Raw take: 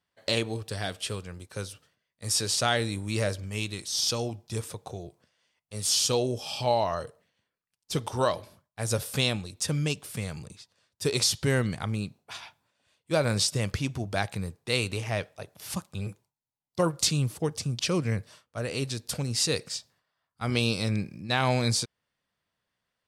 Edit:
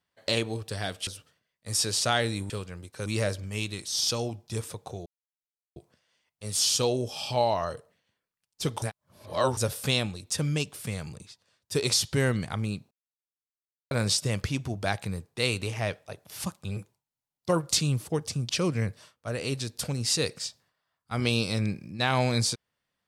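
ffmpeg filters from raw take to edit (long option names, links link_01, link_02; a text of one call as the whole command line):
ffmpeg -i in.wav -filter_complex "[0:a]asplit=9[link_01][link_02][link_03][link_04][link_05][link_06][link_07][link_08][link_09];[link_01]atrim=end=1.072[link_10];[link_02]atrim=start=1.628:end=3.062[link_11];[link_03]atrim=start=1.068:end=1.632[link_12];[link_04]atrim=start=3.058:end=5.06,asetpts=PTS-STARTPTS,afade=type=out:start_time=1.998:duration=0.004:curve=hsin,apad=pad_dur=0.7[link_13];[link_05]atrim=start=5.06:end=8.122,asetpts=PTS-STARTPTS,afade=type=in:duration=0.004:curve=hsin[link_14];[link_06]atrim=start=8.118:end=8.872,asetpts=PTS-STARTPTS,areverse[link_15];[link_07]atrim=start=8.868:end=12.21,asetpts=PTS-STARTPTS,afade=type=out:start_time=3.338:duration=0.004:curve=hsin[link_16];[link_08]atrim=start=12.21:end=13.21,asetpts=PTS-STARTPTS,volume=0[link_17];[link_09]atrim=start=13.21,asetpts=PTS-STARTPTS,afade=type=in:duration=0.004:curve=hsin[link_18];[link_10][link_11]acrossfade=duration=0.004:curve1=hsin:curve2=hsin[link_19];[link_19][link_12]acrossfade=duration=0.004:curve1=hsin:curve2=hsin[link_20];[link_13][link_14]concat=n=2:v=0:a=1[link_21];[link_20][link_21]acrossfade=duration=0.004:curve1=hsin:curve2=hsin[link_22];[link_22][link_15]acrossfade=duration=0.004:curve1=hsin:curve2=hsin[link_23];[link_16][link_17][link_18]concat=n=3:v=0:a=1[link_24];[link_23][link_24]acrossfade=duration=0.004:curve1=hsin:curve2=hsin" out.wav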